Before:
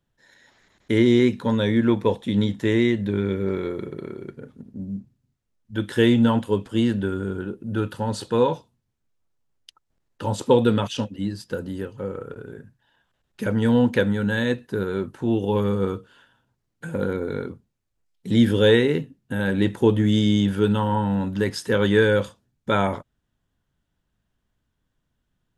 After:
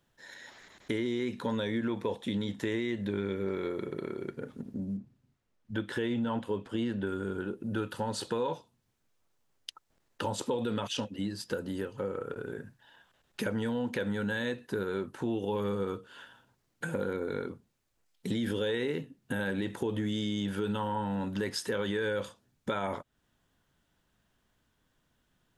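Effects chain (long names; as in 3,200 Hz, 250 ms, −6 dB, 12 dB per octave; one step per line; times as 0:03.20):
0:04.97–0:07.07: high-shelf EQ 4,800 Hz −11 dB
brickwall limiter −14 dBFS, peak gain reduction 8.5 dB
low-shelf EQ 200 Hz −9.5 dB
downward compressor 2.5 to 1, threshold −42 dBFS, peak gain reduction 14.5 dB
level +6.5 dB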